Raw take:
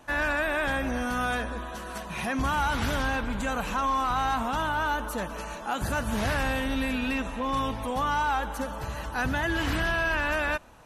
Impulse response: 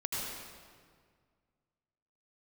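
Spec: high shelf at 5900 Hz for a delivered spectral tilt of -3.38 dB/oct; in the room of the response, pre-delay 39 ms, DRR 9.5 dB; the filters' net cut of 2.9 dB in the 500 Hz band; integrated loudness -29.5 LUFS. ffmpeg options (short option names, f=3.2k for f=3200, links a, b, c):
-filter_complex "[0:a]equalizer=f=500:t=o:g=-3.5,highshelf=f=5.9k:g=-7,asplit=2[a][b];[1:a]atrim=start_sample=2205,adelay=39[c];[b][c]afir=irnorm=-1:irlink=0,volume=-14dB[d];[a][d]amix=inputs=2:normalize=0,volume=-0.5dB"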